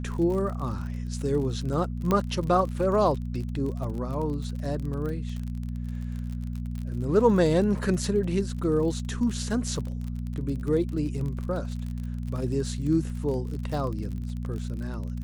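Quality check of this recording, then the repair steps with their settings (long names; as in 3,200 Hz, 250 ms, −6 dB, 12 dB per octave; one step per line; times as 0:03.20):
surface crackle 39 per second −33 dBFS
mains hum 60 Hz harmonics 4 −32 dBFS
0:02.11: click −12 dBFS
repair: click removal
hum removal 60 Hz, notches 4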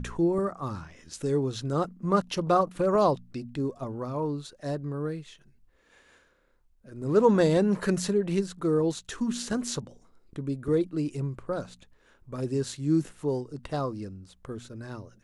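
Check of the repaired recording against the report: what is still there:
none of them is left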